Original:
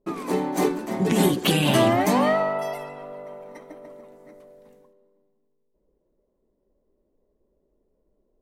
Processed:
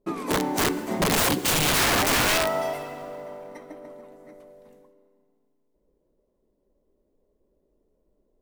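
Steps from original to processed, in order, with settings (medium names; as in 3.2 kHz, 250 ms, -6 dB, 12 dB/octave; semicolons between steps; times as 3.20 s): integer overflow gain 16.5 dB; FDN reverb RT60 2.9 s, low-frequency decay 1.2×, high-frequency decay 0.75×, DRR 15 dB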